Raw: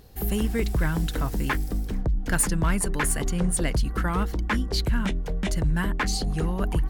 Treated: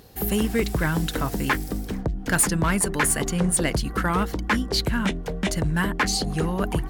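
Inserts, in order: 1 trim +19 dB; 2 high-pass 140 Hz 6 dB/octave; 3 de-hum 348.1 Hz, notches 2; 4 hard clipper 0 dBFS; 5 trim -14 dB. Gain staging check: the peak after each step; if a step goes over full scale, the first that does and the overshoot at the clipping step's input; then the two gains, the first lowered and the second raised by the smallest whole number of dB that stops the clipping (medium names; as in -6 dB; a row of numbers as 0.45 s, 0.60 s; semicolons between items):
+3.5 dBFS, +5.5 dBFS, +5.5 dBFS, 0.0 dBFS, -14.0 dBFS; step 1, 5.5 dB; step 1 +13 dB, step 5 -8 dB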